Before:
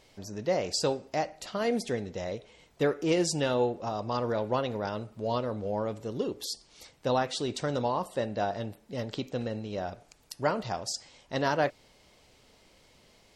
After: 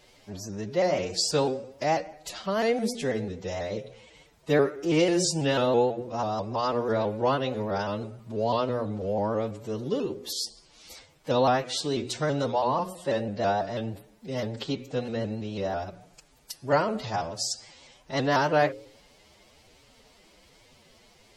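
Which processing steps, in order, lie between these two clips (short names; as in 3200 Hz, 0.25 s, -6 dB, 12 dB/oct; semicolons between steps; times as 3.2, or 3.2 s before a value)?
notches 60/120/180/240/300/360/420/480/540 Hz; time stretch by phase-locked vocoder 1.6×; shaped vibrato saw up 6.1 Hz, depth 100 cents; gain +4 dB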